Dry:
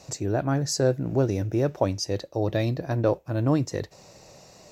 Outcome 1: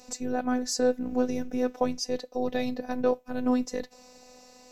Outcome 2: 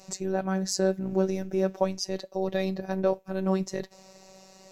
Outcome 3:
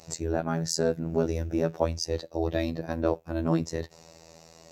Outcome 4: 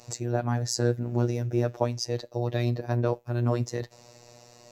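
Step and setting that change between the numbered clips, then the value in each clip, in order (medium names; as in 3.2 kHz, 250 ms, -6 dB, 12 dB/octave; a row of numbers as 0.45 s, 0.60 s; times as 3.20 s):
robot voice, frequency: 250 Hz, 190 Hz, 82 Hz, 120 Hz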